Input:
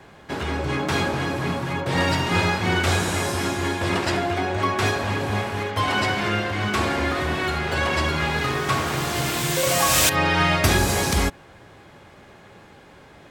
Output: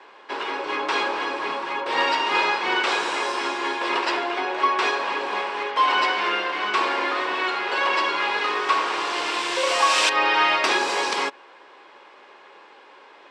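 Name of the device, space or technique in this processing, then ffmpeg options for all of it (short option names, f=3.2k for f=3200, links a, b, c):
phone speaker on a table: -af "highpass=f=370:w=0.5412,highpass=f=370:w=1.3066,equalizer=f=670:t=q:w=4:g=-5,equalizer=f=1k:t=q:w=4:g=8,equalizer=f=2.7k:t=q:w=4:g=4,equalizer=f=6.6k:t=q:w=4:g=-7,lowpass=f=6.8k:w=0.5412,lowpass=f=6.8k:w=1.3066"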